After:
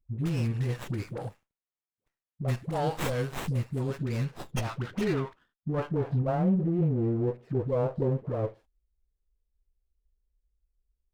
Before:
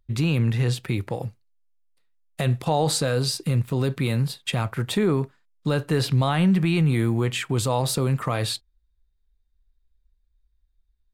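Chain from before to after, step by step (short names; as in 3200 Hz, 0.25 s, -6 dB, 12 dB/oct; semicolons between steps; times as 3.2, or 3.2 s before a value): dispersion highs, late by 96 ms, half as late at 550 Hz; low-pass sweep 9600 Hz -> 520 Hz, 3.79–6.49; running maximum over 9 samples; gain -7 dB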